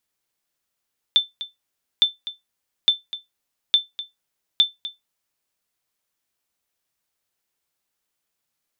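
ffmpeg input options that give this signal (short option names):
-f lavfi -i "aevalsrc='0.447*(sin(2*PI*3540*mod(t,0.86))*exp(-6.91*mod(t,0.86)/0.17)+0.178*sin(2*PI*3540*max(mod(t,0.86)-0.25,0))*exp(-6.91*max(mod(t,0.86)-0.25,0)/0.17))':d=4.3:s=44100"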